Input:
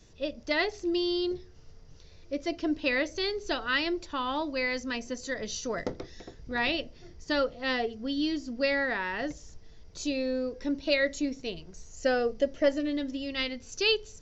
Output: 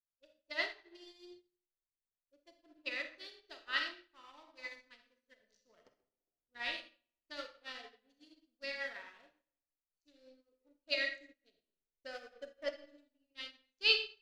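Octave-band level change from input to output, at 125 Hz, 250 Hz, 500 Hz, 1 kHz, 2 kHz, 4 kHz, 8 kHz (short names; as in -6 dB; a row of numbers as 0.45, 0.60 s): under -30 dB, -28.0 dB, -18.0 dB, -16.5 dB, -8.5 dB, -6.0 dB, n/a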